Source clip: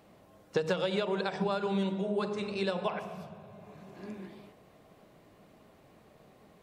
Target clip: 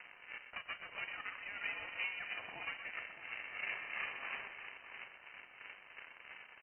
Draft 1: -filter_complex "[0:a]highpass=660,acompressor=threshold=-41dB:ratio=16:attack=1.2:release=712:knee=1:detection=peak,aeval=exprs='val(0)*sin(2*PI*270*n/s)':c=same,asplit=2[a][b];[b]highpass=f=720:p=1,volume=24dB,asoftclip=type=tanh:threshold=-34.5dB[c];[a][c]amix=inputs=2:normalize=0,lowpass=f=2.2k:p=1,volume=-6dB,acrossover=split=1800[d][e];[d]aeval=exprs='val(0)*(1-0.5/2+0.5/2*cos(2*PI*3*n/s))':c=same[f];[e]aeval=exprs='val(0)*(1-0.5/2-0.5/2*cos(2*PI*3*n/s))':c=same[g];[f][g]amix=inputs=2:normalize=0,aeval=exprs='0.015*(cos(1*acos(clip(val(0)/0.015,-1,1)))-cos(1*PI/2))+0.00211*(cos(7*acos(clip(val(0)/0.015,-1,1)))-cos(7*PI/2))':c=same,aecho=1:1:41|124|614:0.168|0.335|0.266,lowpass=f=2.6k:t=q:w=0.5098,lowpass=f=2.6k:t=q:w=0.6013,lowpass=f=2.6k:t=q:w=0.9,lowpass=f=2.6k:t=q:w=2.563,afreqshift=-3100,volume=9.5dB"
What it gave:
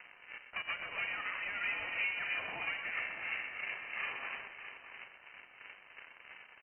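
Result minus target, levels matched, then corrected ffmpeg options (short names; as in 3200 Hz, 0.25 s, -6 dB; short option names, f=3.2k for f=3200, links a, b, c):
compressor: peak gain reduction -7 dB
-filter_complex "[0:a]highpass=660,acompressor=threshold=-48.5dB:ratio=16:attack=1.2:release=712:knee=1:detection=peak,aeval=exprs='val(0)*sin(2*PI*270*n/s)':c=same,asplit=2[a][b];[b]highpass=f=720:p=1,volume=24dB,asoftclip=type=tanh:threshold=-34.5dB[c];[a][c]amix=inputs=2:normalize=0,lowpass=f=2.2k:p=1,volume=-6dB,acrossover=split=1800[d][e];[d]aeval=exprs='val(0)*(1-0.5/2+0.5/2*cos(2*PI*3*n/s))':c=same[f];[e]aeval=exprs='val(0)*(1-0.5/2-0.5/2*cos(2*PI*3*n/s))':c=same[g];[f][g]amix=inputs=2:normalize=0,aeval=exprs='0.015*(cos(1*acos(clip(val(0)/0.015,-1,1)))-cos(1*PI/2))+0.00211*(cos(7*acos(clip(val(0)/0.015,-1,1)))-cos(7*PI/2))':c=same,aecho=1:1:41|124|614:0.168|0.335|0.266,lowpass=f=2.6k:t=q:w=0.5098,lowpass=f=2.6k:t=q:w=0.6013,lowpass=f=2.6k:t=q:w=0.9,lowpass=f=2.6k:t=q:w=2.563,afreqshift=-3100,volume=9.5dB"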